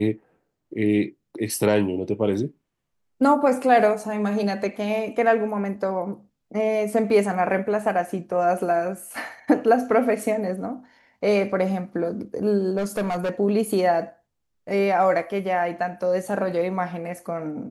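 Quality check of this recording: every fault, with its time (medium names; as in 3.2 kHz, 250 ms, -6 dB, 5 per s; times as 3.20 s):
12.77–13.31 s: clipped -21 dBFS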